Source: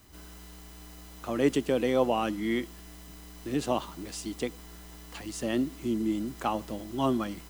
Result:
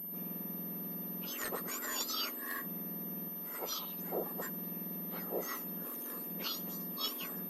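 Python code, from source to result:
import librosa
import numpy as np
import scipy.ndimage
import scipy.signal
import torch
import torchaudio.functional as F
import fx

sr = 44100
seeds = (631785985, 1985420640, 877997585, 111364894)

y = fx.octave_mirror(x, sr, pivot_hz=1900.0)
y = fx.low_shelf(y, sr, hz=460.0, db=-6.5, at=(3.28, 3.99))
y = fx.pwm(y, sr, carrier_hz=13000.0)
y = y * librosa.db_to_amplitude(-2.5)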